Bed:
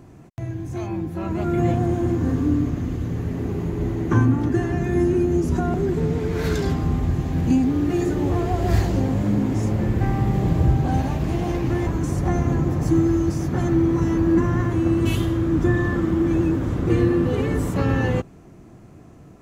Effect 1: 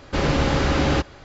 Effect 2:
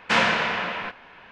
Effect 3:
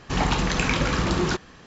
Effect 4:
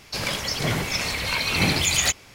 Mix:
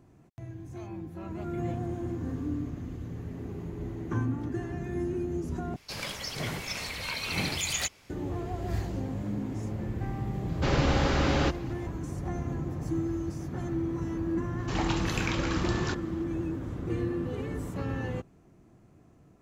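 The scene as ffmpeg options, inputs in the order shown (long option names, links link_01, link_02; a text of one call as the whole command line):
ffmpeg -i bed.wav -i cue0.wav -i cue1.wav -i cue2.wav -i cue3.wav -filter_complex "[0:a]volume=-12.5dB,asplit=2[link_01][link_02];[link_01]atrim=end=5.764[link_03];[4:a]atrim=end=2.34,asetpts=PTS-STARTPTS,volume=-9.5dB[link_04];[link_02]atrim=start=8.096[link_05];[1:a]atrim=end=1.24,asetpts=PTS-STARTPTS,volume=-5.5dB,afade=type=in:duration=0.004:curve=hsin,afade=type=out:start_time=1.236:duration=0.004:curve=hsin,adelay=10490[link_06];[3:a]atrim=end=1.66,asetpts=PTS-STARTPTS,volume=-8dB,afade=type=in:duration=0.004:curve=hsin,afade=type=out:start_time=1.656:duration=0.004:curve=hsin,adelay=14580[link_07];[link_03][link_04]acrossfade=duration=0.004:curve1=hsin:curve2=hsin[link_08];[link_08][link_05]acrossfade=duration=0.004:curve1=hsin:curve2=hsin[link_09];[link_09][link_06][link_07]amix=inputs=3:normalize=0" out.wav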